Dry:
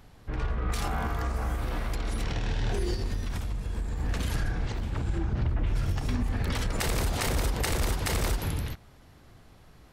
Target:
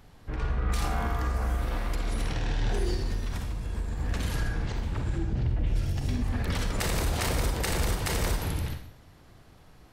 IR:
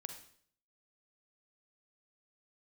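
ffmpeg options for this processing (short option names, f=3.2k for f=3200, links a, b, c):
-filter_complex "[0:a]asettb=1/sr,asplit=3[a][b][c];[a]atrim=end=5.164[d];[b]atrim=start=5.16:end=6.22,asetpts=PTS-STARTPTS,afade=t=in:d=0.004:c=qsin,afade=t=out:st=1.056:d=0.004:c=qsin,equalizer=f=1.2k:w=1.2:g=-8.5[e];[c]atrim=start=6.216[f];[d][e]acrossfade=d=0.004:c1=hsin:c2=qsin[g];[g][f]acrossfade=d=0.004:c1=qsin:c2=hsin[h];[1:a]atrim=start_sample=2205[i];[h][i]afir=irnorm=-1:irlink=0,volume=3.5dB"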